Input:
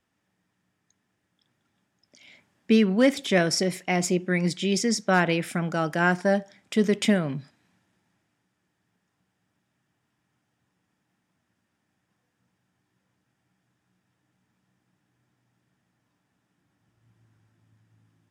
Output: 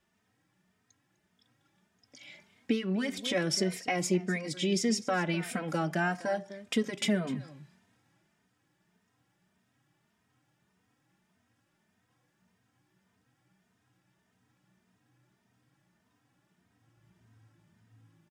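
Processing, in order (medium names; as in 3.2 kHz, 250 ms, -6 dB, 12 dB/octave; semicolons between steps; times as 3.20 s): compression 2.5:1, threshold -31 dBFS, peak gain reduction 11.5 dB; delay 251 ms -17.5 dB; endless flanger 3 ms +1.7 Hz; trim +4.5 dB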